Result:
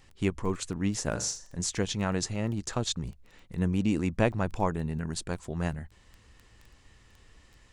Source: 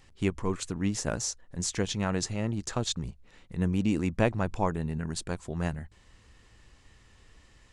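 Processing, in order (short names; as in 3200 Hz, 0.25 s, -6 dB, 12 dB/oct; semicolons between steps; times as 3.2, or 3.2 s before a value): 1.11–1.61 flutter echo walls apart 7.1 m, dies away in 0.35 s; crackle 10/s -39 dBFS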